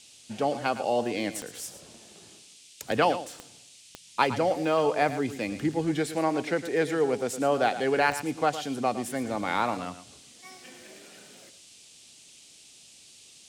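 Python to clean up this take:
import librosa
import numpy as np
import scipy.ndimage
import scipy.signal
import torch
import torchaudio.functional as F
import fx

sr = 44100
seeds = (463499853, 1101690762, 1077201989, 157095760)

y = fx.fix_declick_ar(x, sr, threshold=10.0)
y = fx.noise_reduce(y, sr, print_start_s=12.44, print_end_s=12.94, reduce_db=20.0)
y = fx.fix_echo_inverse(y, sr, delay_ms=112, level_db=-12.5)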